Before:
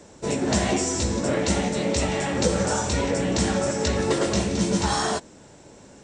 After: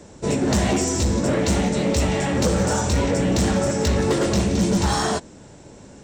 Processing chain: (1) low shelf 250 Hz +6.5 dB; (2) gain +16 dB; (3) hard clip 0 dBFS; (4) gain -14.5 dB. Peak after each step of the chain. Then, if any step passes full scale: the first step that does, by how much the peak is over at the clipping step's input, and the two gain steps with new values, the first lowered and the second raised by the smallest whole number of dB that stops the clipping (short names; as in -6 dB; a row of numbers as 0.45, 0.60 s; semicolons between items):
-6.0, +10.0, 0.0, -14.5 dBFS; step 2, 10.0 dB; step 2 +6 dB, step 4 -4.5 dB